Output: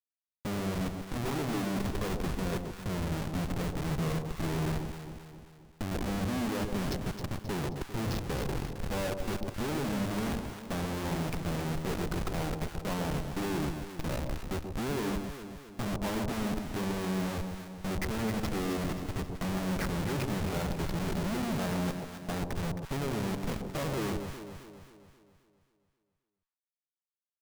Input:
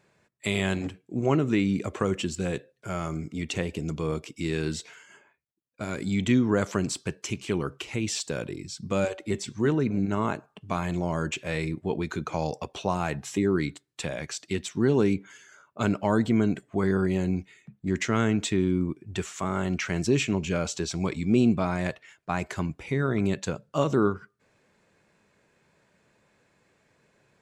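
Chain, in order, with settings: nonlinear frequency compression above 2500 Hz 1.5:1; bell 3200 Hz -14.5 dB 1.2 oct; Schmitt trigger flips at -34.5 dBFS; echo with dull and thin repeats by turns 0.133 s, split 940 Hz, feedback 70%, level -5 dB; gain -4 dB

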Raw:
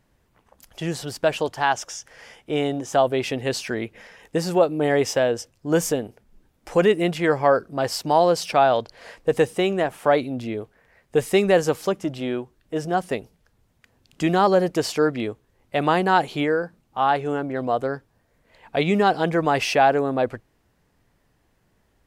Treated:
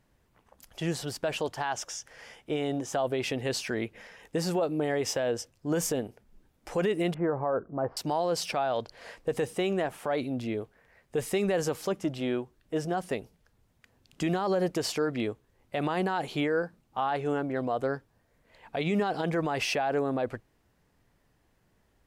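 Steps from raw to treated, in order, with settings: 7.14–7.97 LPF 1300 Hz 24 dB/oct; limiter -16 dBFS, peak gain reduction 11 dB; gain -3.5 dB

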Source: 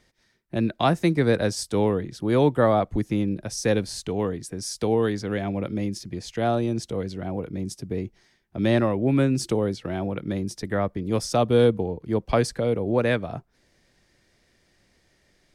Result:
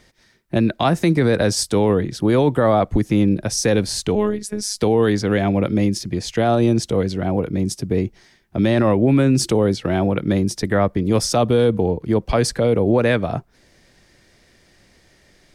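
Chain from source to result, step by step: 4.15–4.82 robotiser 210 Hz; maximiser +16 dB; gain -6.5 dB

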